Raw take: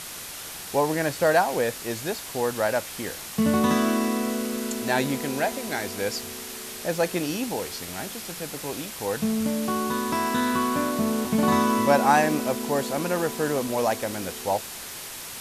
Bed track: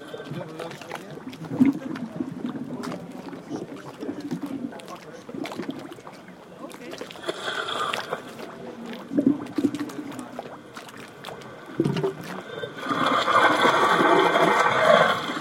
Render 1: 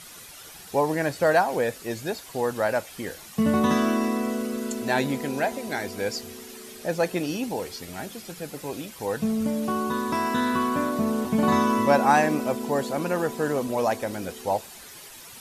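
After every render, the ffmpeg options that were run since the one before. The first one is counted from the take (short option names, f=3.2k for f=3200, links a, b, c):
-af "afftdn=nr=10:nf=-38"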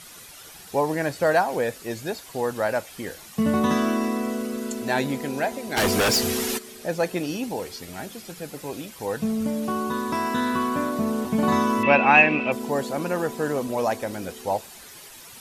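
-filter_complex "[0:a]asplit=3[a][b][c];[a]afade=t=out:st=5.76:d=0.02[d];[b]aeval=exprs='0.15*sin(PI/2*3.98*val(0)/0.15)':c=same,afade=t=in:st=5.76:d=0.02,afade=t=out:st=6.57:d=0.02[e];[c]afade=t=in:st=6.57:d=0.02[f];[d][e][f]amix=inputs=3:normalize=0,asettb=1/sr,asplit=3[g][h][i];[g]atrim=end=11.834[j];[h]atrim=start=11.83:end=12.52,asetpts=PTS-STARTPTS,afade=t=in:d=0.004:c=qsin,afade=t=out:st=0.686:d=0.004:c=qsin,lowpass=f=2.6k:t=q:w=12[k];[i]atrim=start=12.516[l];[j][k]acrossfade=d=0.004:c1=hsin:c2=qsin[m];[m][l]acrossfade=d=0.004:c1=qsin:c2=hsin"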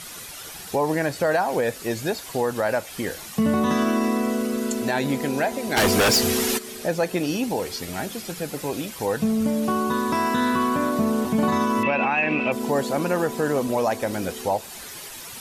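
-filter_complex "[0:a]asplit=2[a][b];[b]acompressor=threshold=-30dB:ratio=6,volume=0.5dB[c];[a][c]amix=inputs=2:normalize=0,alimiter=limit=-12.5dB:level=0:latency=1:release=68"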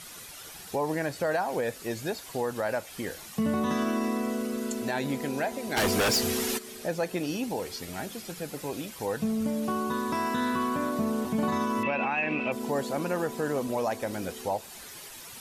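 -af "volume=-6.5dB"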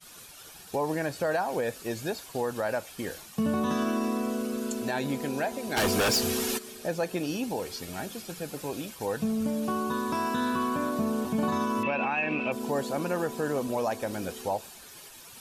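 -af "agate=range=-33dB:threshold=-40dB:ratio=3:detection=peak,bandreject=f=2k:w=12"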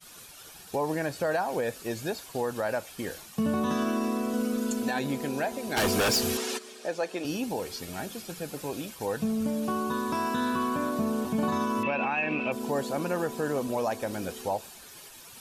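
-filter_complex "[0:a]asettb=1/sr,asplit=3[a][b][c];[a]atrim=end=4.334[d];[b]atrim=start=4.33:end=4.99,asetpts=PTS-STARTPTS,afade=t=in:d=0.004:c=qsin,afade=t=out:st=0.656:d=0.004:c=qsin,aecho=1:1:4:0.59,atrim=end_sample=29106[e];[c]atrim=start=4.986[f];[d][e]acrossfade=d=0.004:c1=hsin:c2=qsin[g];[g][f]acrossfade=d=0.004:c1=qsin:c2=hsin,asettb=1/sr,asplit=3[h][i][j];[h]atrim=end=6.374[k];[i]atrim=start=6.37:end=7.25,asetpts=PTS-STARTPTS,afade=t=in:d=0.004:c=qsin,afade=t=out:st=0.876:d=0.004:c=qsin,highpass=330,lowpass=7.8k[l];[j]atrim=start=7.246[m];[k][l]acrossfade=d=0.004:c1=hsin:c2=qsin[n];[n][m]acrossfade=d=0.004:c1=qsin:c2=hsin"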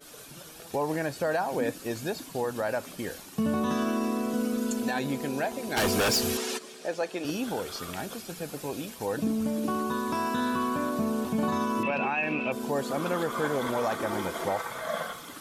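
-filter_complex "[1:a]volume=-16dB[a];[0:a][a]amix=inputs=2:normalize=0"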